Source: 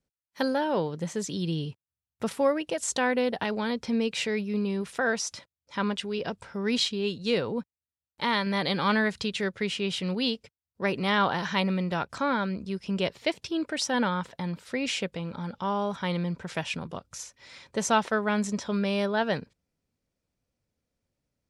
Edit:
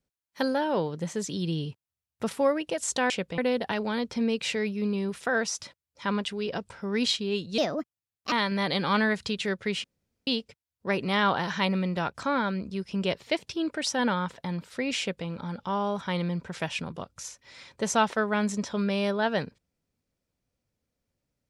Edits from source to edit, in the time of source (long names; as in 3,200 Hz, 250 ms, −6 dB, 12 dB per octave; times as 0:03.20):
0:07.30–0:08.27: play speed 131%
0:09.79–0:10.22: fill with room tone
0:14.94–0:15.22: duplicate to 0:03.10